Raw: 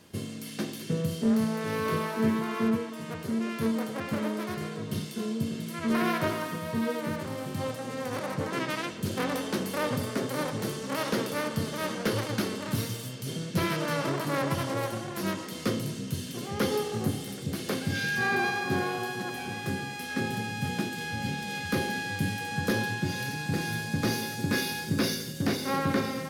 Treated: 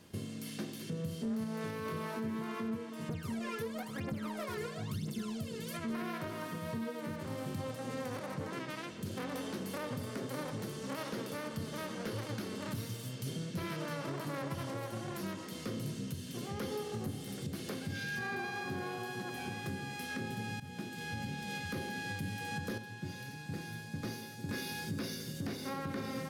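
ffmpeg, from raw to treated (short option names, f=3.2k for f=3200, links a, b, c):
-filter_complex "[0:a]asettb=1/sr,asplit=3[a][b][c];[a]atrim=end=3.094[d];[b]atrim=start=3.09:end=5.77,asetpts=PTS-STARTPTS,afade=t=in:d=0.004:c=qsin,afade=t=out:st=2.676:d=0.004:c=qsin,aphaser=in_gain=1:out_gain=1:delay=2.4:decay=0.77:speed=1:type=triangular[e];[c]atrim=start=5.766[f];[d][e]acrossfade=d=0.004:c1=hsin:c2=qsin[g];[g][f]acrossfade=d=0.004:c1=qsin:c2=hsin,asplit=4[h][i][j][k];[h]atrim=end=20.6,asetpts=PTS-STARTPTS,afade=t=out:st=20.596:d=0.004:c=hsin:silence=0.158489[l];[i]atrim=start=20.6:end=22.78,asetpts=PTS-STARTPTS,afade=t=in:d=0.69:silence=0.158489,afade=t=out:st=2.02:d=0.16:c=log:silence=0.334965[m];[j]atrim=start=22.78:end=24.49,asetpts=PTS-STARTPTS,volume=-9.5dB[n];[k]atrim=start=24.49,asetpts=PTS-STARTPTS,afade=t=in:d=0.16:c=log:silence=0.334965[o];[l][m][n][o]concat=n=4:v=0:a=1,lowshelf=f=220:g=4,alimiter=level_in=1.5dB:limit=-24dB:level=0:latency=1:release=324,volume=-1.5dB,volume=-4dB"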